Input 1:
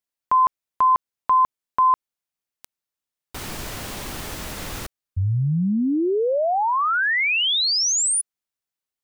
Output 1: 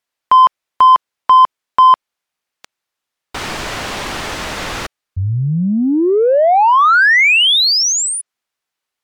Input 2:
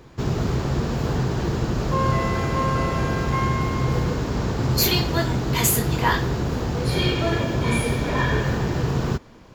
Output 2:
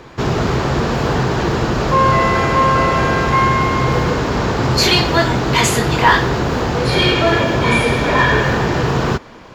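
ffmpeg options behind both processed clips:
ffmpeg -i in.wav -filter_complex "[0:a]acrossover=split=9400[link_01][link_02];[link_02]acompressor=threshold=-48dB:ratio=4:attack=1:release=60[link_03];[link_01][link_03]amix=inputs=2:normalize=0,asplit=2[link_04][link_05];[link_05]highpass=frequency=720:poles=1,volume=9dB,asoftclip=type=tanh:threshold=-8dB[link_06];[link_04][link_06]amix=inputs=2:normalize=0,lowpass=frequency=3000:poles=1,volume=-6dB,asplit=2[link_07][link_08];[link_08]asoftclip=type=tanh:threshold=-20dB,volume=-9dB[link_09];[link_07][link_09]amix=inputs=2:normalize=0,volume=7dB" -ar 48000 -c:a libmp3lame -b:a 128k out.mp3

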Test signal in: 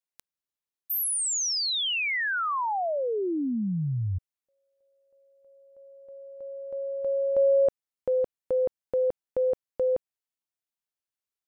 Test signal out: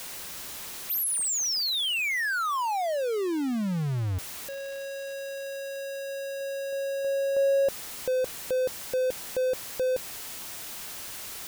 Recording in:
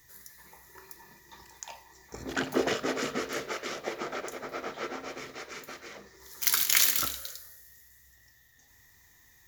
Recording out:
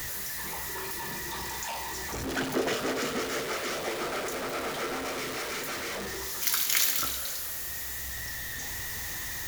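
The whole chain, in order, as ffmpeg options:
ffmpeg -i in.wav -af "aeval=exprs='val(0)+0.5*0.0501*sgn(val(0))':channel_layout=same,volume=-4dB" out.wav

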